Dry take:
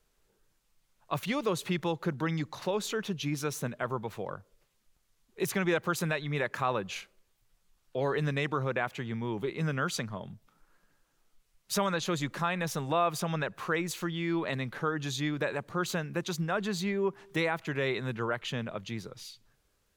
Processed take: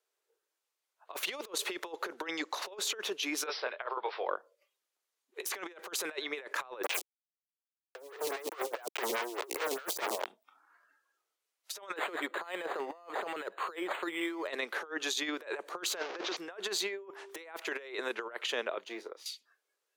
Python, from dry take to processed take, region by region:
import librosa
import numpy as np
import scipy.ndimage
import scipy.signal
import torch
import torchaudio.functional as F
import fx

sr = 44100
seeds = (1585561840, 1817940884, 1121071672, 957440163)

y = fx.chain(x, sr, fx.bandpass_edges(low_hz=600.0, high_hz=5000.0),
    fx.doubler(ms=24.0, db=-6.0),
    fx.resample_bad(factor=4, down='none', up='filtered'), at=(3.46, 4.28))
y = fx.chain(y, sr, fx.high_shelf(hz=3800.0, db=-8.0),
    fx.quant_companded(bits=2),
    fx.stagger_phaser(hz=4.8), at=(6.83, 10.26))
y = fx.chain(y, sr, fx.steep_lowpass(hz=7600.0, slope=96),
    fx.resample_linear(factor=8), at=(11.96, 14.48))
y = fx.chain(y, sr, fx.delta_mod(bps=32000, step_db=-33.5),
    fx.high_shelf(hz=3900.0, db=-9.0), at=(15.96, 16.37))
y = fx.chain(y, sr, fx.law_mismatch(coded='A'),
    fx.high_shelf(hz=2000.0, db=-9.5),
    fx.doubler(ms=32.0, db=-11.0), at=(18.84, 19.26))
y = scipy.signal.sosfilt(scipy.signal.butter(6, 360.0, 'highpass', fs=sr, output='sos'), y)
y = fx.noise_reduce_blind(y, sr, reduce_db=15)
y = fx.over_compress(y, sr, threshold_db=-38.0, ratio=-0.5)
y = F.gain(torch.from_numpy(y), 1.5).numpy()